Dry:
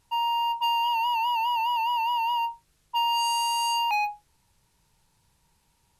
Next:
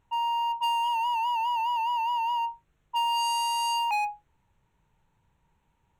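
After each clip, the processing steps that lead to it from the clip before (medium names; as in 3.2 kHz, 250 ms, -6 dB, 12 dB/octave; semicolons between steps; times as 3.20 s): local Wiener filter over 9 samples; trim -1 dB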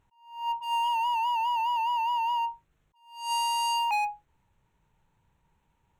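attacks held to a fixed rise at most 110 dB/s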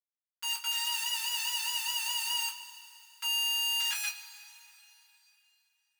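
Schmitt trigger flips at -30.5 dBFS; elliptic high-pass 1.3 kHz, stop band 70 dB; two-slope reverb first 0.2 s, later 3.2 s, from -22 dB, DRR -3 dB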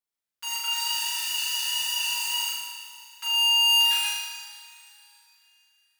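in parallel at -6 dB: saturation -35.5 dBFS, distortion -8 dB; on the sum: flutter echo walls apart 6.6 m, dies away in 1.1 s; trim -1.5 dB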